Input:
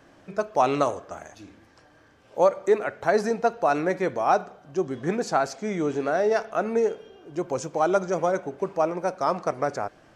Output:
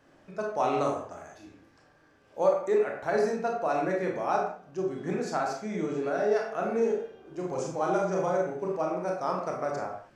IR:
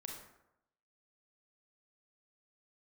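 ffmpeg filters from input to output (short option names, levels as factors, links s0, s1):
-filter_complex "[0:a]asettb=1/sr,asplit=3[s0][s1][s2];[s0]atrim=end=6.524[s3];[s1]atrim=start=6.52:end=8.84,asetpts=PTS-STARTPTS,afade=t=in:d=0.004:c=qsin,afade=t=out:st=2.316:d=0.004:c=qsin,asplit=2[s4][s5];[s5]adelay=39,volume=0.562[s6];[s4][s6]amix=inputs=2:normalize=0,atrim=end_sample=102312[s7];[s2]atrim=start=8.836[s8];[s3][s7]acrossfade=d=0.004:c1=hsin:c2=qsin[s9];[s9][s8]acrossfade=d=0.004:c1=qsin:c2=hsin[s10];[1:a]atrim=start_sample=2205,afade=t=out:st=0.35:d=0.01,atrim=end_sample=15876,asetrate=57330,aresample=44100[s11];[s10][s11]afir=irnorm=-1:irlink=0"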